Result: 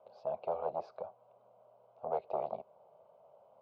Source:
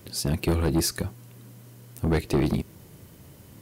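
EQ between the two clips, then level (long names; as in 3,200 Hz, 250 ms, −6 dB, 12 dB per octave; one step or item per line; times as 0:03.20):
four-pole ladder band-pass 710 Hz, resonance 60%
high-frequency loss of the air 260 metres
phaser with its sweep stopped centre 750 Hz, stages 4
+8.0 dB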